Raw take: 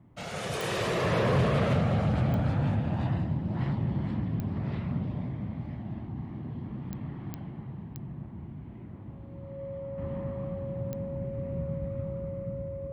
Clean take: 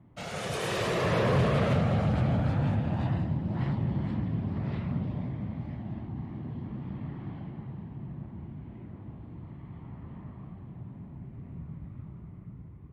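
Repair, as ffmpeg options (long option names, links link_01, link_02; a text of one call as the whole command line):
ffmpeg -i in.wav -af "adeclick=threshold=4,bandreject=frequency=550:width=30,asetnsamples=nb_out_samples=441:pad=0,asendcmd='9.98 volume volume -7dB',volume=0dB" out.wav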